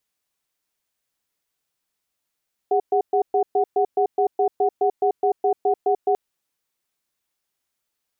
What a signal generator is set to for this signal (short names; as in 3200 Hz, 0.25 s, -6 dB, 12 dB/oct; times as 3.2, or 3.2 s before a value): cadence 406 Hz, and 741 Hz, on 0.09 s, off 0.12 s, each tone -18.5 dBFS 3.44 s